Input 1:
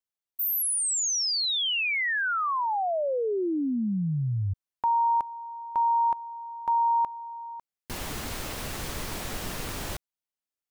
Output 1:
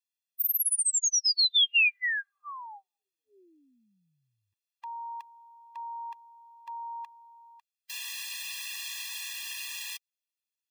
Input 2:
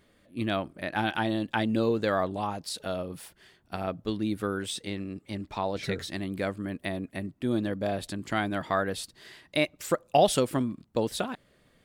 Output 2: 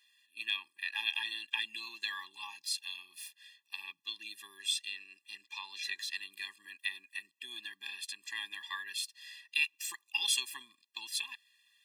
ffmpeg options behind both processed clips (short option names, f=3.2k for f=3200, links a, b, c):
-af "highpass=f=2.7k:t=q:w=1.6,afftfilt=real='re*eq(mod(floor(b*sr/1024/400),2),0)':imag='im*eq(mod(floor(b*sr/1024/400),2),0)':win_size=1024:overlap=0.75,volume=2.5dB"